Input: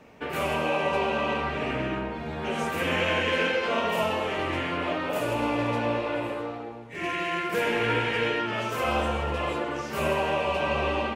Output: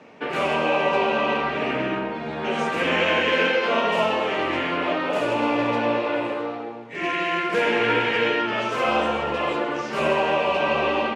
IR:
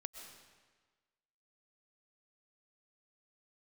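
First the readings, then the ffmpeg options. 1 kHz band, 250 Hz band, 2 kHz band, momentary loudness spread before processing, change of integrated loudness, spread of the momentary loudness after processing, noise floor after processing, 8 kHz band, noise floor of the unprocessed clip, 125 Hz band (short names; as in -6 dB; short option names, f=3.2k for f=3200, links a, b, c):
+5.0 dB, +4.0 dB, +5.0 dB, 7 LU, +4.5 dB, 7 LU, -32 dBFS, n/a, -37 dBFS, -2.5 dB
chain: -af "highpass=180,lowpass=5.6k,volume=5dB"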